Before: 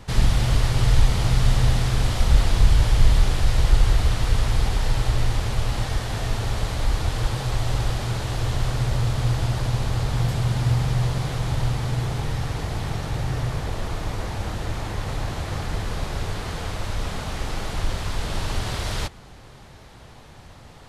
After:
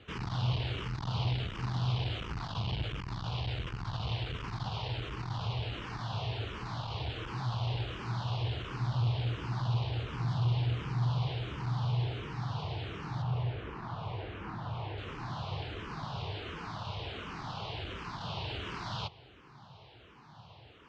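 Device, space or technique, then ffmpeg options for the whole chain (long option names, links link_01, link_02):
barber-pole phaser into a guitar amplifier: -filter_complex "[0:a]asettb=1/sr,asplit=3[link_01][link_02][link_03];[link_01]atrim=end=13.224[link_04];[link_02]atrim=start=13.22:end=14.98,asetpts=PTS-STARTPTS,afade=type=in:duration=0.004:curve=qsin,afade=type=out:start_time=1.756:duration=0.004:curve=qsin,acrossover=split=3000[link_05][link_06];[link_06]acompressor=threshold=-54dB:ratio=4:attack=1:release=60[link_07];[link_05][link_07]amix=inputs=2:normalize=0[link_08];[link_03]atrim=start=14.976[link_09];[link_04][link_08]acrossfade=duration=0.004:curve1=hsin:curve2=qsin[link_10];[link_10][link_09]acrossfade=duration=0.004:curve1=qsin:curve2=hsin,asplit=2[link_11][link_12];[link_12]afreqshift=-1.4[link_13];[link_11][link_13]amix=inputs=2:normalize=1,asoftclip=type=tanh:threshold=-18dB,highpass=110,equalizer=frequency=120:width_type=q:width=4:gain=4,equalizer=frequency=240:width_type=q:width=4:gain=-5,equalizer=frequency=550:width_type=q:width=4:gain=-5,equalizer=frequency=1000:width_type=q:width=4:gain=4,equalizer=frequency=1900:width_type=q:width=4:gain=-6,equalizer=frequency=2900:width_type=q:width=4:gain=5,lowpass=frequency=4500:width=0.5412,lowpass=frequency=4500:width=1.3066,volume=-4.5dB"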